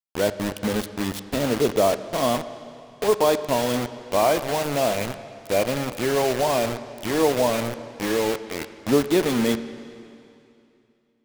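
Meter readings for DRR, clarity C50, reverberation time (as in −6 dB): 11.5 dB, 12.5 dB, 2.6 s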